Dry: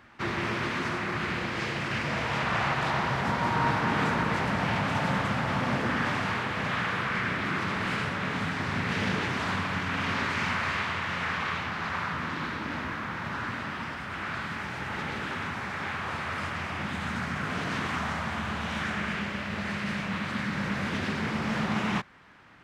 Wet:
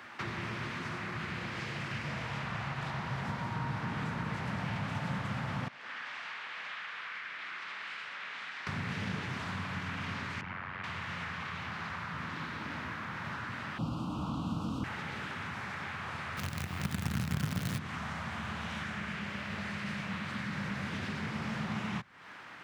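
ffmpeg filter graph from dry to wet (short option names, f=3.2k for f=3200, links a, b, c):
-filter_complex "[0:a]asettb=1/sr,asplit=3[a][b][c];[a]atrim=end=5.684[d];[b]atrim=start=5.68:end=8.67,asetpts=PTS-STARTPTS,afade=t=in:d=0.004:c=qsin,afade=t=out:st=2.986:d=0.004:c=qsin,lowpass=2.8k,aderivative[e];[c]atrim=start=8.666[f];[d][e]acrossfade=d=0.004:c1=hsin:c2=qsin[g];[g][f]acrossfade=d=0.004:c1=qsin:c2=hsin,asettb=1/sr,asplit=3[h][i][j];[h]atrim=end=10.414[k];[i]atrim=start=10.41:end=10.84,asetpts=PTS-STARTPTS,afade=t=in:d=0.004:c=qsin,afade=t=out:st=0.426:d=0.004:c=qsin,lowpass=2.1k,tremolo=f=92:d=0.919[l];[j]atrim=start=10.836[m];[k][l]acrossfade=d=0.004:c1=hsin:c2=qsin[n];[n][m]acrossfade=d=0.004:c1=qsin:c2=hsin,asettb=1/sr,asplit=3[o][p][q];[o]atrim=end=13.784[r];[p]atrim=start=13.78:end=14.84,asetpts=PTS-STARTPTS,afade=t=in:d=0.004:c=qsin,afade=t=out:st=1.056:d=0.004:c=qsin,lowshelf=f=630:t=q:w=1.5:g=10.5,afreqshift=-390,asuperstop=centerf=1900:order=8:qfactor=1.4[s];[q]atrim=start=14.836[t];[r][s]acrossfade=d=0.004:c1=hsin:c2=qsin[u];[u][t]acrossfade=d=0.004:c1=qsin:c2=hsin,asettb=1/sr,asplit=3[v][w][x];[v]atrim=end=16.374[y];[w]atrim=start=16.37:end=17.79,asetpts=PTS-STARTPTS,afade=t=in:d=0.004:c=qsin,afade=t=out:st=1.416:d=0.004:c=qsin,equalizer=f=120:w=0.52:g=6,acontrast=41,acrusher=bits=4:dc=4:mix=0:aa=0.000001[z];[x]atrim=start=17.786[aa];[y][z]acrossfade=d=0.004:c1=hsin:c2=qsin[ab];[ab][aa]acrossfade=d=0.004:c1=qsin:c2=hsin,highpass=93,lowshelf=f=390:g=-9.5,acrossover=split=170[ac][ad];[ad]acompressor=threshold=-46dB:ratio=8[ae];[ac][ae]amix=inputs=2:normalize=0,volume=7.5dB"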